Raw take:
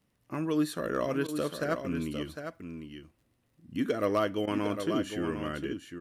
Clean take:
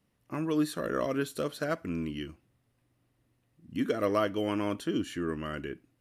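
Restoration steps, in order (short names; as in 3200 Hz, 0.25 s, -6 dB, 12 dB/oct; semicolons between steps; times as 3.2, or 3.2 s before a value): clip repair -18.5 dBFS; de-click; interpolate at 1.27/4.46, 12 ms; inverse comb 0.754 s -8 dB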